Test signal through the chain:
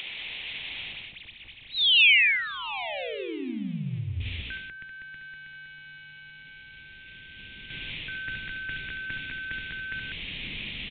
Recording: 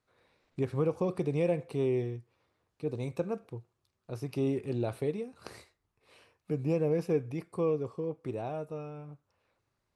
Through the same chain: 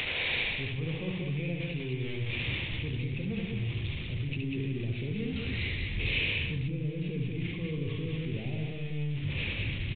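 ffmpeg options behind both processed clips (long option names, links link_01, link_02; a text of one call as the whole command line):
ffmpeg -i in.wav -filter_complex "[0:a]aeval=exprs='val(0)+0.5*0.02*sgn(val(0))':channel_layout=same,bandreject=frequency=60:width_type=h:width=6,bandreject=frequency=120:width_type=h:width=6,bandreject=frequency=180:width_type=h:width=6,bandreject=frequency=240:width_type=h:width=6,bandreject=frequency=300:width_type=h:width=6,bandreject=frequency=360:width_type=h:width=6,bandreject=frequency=420:width_type=h:width=6,asubboost=boost=10.5:cutoff=220,acrossover=split=310[link_01][link_02];[link_02]acompressor=mode=upward:threshold=-37dB:ratio=2.5[link_03];[link_01][link_03]amix=inputs=2:normalize=0,alimiter=limit=-17dB:level=0:latency=1:release=57,areverse,acompressor=threshold=-33dB:ratio=12,areverse,highshelf=frequency=1800:width_type=q:width=3:gain=9.5,aecho=1:1:69.97|195.3:0.562|0.708" -ar 8000 -c:a pcm_alaw out.wav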